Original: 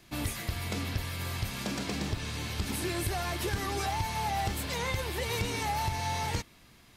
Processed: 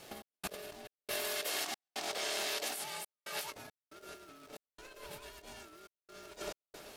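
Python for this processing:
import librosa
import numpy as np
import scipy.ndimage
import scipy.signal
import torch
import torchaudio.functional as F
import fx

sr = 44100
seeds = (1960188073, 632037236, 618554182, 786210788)

y = x * np.sin(2.0 * np.pi * 510.0 * np.arange(len(x)) / sr)
y = fx.highpass(y, sr, hz=1200.0, slope=6, at=(1.06, 3.52))
y = fx.echo_feedback(y, sr, ms=129, feedback_pct=57, wet_db=-15.0)
y = fx.over_compress(y, sr, threshold_db=-43.0, ratio=-0.5)
y = fx.high_shelf(y, sr, hz=5500.0, db=4.0)
y = fx.dmg_crackle(y, sr, seeds[0], per_s=430.0, level_db=-52.0)
y = fx.step_gate(y, sr, bpm=69, pattern='x.xx.xxx.xxxx', floor_db=-60.0, edge_ms=4.5)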